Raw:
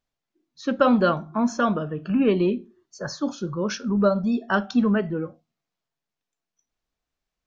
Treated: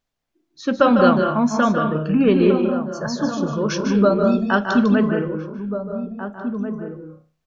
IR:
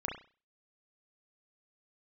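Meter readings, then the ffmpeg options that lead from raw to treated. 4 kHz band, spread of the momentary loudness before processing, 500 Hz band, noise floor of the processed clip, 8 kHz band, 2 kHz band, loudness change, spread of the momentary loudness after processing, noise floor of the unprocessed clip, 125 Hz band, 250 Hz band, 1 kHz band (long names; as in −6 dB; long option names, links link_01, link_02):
+4.5 dB, 12 LU, +6.0 dB, −76 dBFS, can't be measured, +5.5 dB, +4.0 dB, 13 LU, below −85 dBFS, +5.5 dB, +5.5 dB, +5.5 dB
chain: -filter_complex "[0:a]asplit=2[link_01][link_02];[link_02]adelay=1691,volume=-9dB,highshelf=frequency=4000:gain=-38[link_03];[link_01][link_03]amix=inputs=2:normalize=0,asplit=2[link_04][link_05];[1:a]atrim=start_sample=2205,adelay=150[link_06];[link_05][link_06]afir=irnorm=-1:irlink=0,volume=-6.5dB[link_07];[link_04][link_07]amix=inputs=2:normalize=0,volume=3.5dB"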